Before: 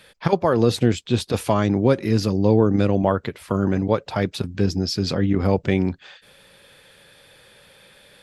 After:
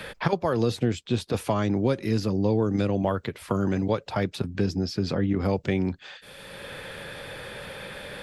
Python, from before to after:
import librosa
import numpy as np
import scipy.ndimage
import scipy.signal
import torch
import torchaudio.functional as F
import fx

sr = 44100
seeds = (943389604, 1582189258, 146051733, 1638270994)

y = fx.band_squash(x, sr, depth_pct=70)
y = y * 10.0 ** (-5.5 / 20.0)